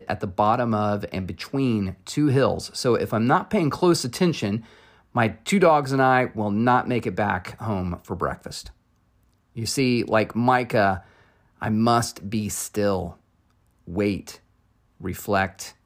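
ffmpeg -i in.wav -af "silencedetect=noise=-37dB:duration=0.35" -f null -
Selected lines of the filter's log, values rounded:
silence_start: 4.61
silence_end: 5.15 | silence_duration: 0.54
silence_start: 8.70
silence_end: 9.57 | silence_duration: 0.86
silence_start: 11.00
silence_end: 11.62 | silence_duration: 0.62
silence_start: 13.13
silence_end: 13.88 | silence_duration: 0.75
silence_start: 14.35
silence_end: 15.01 | silence_duration: 0.66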